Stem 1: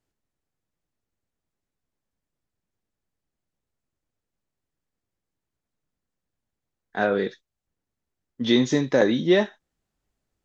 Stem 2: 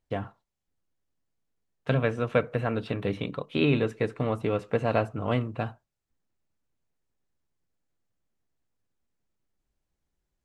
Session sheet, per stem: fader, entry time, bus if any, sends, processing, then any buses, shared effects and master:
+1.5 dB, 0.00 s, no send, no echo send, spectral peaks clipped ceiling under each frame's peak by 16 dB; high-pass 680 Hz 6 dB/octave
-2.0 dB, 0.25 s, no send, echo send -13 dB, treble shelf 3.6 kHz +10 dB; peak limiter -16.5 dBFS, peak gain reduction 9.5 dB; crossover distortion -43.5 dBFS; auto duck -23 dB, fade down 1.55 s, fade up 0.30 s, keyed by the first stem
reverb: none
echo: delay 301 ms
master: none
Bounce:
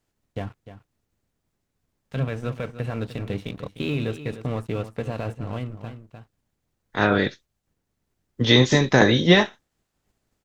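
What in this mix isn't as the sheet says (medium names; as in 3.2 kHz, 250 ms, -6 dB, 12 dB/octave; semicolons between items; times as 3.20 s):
stem 1: missing high-pass 680 Hz 6 dB/octave; master: extra bass shelf 190 Hz +9.5 dB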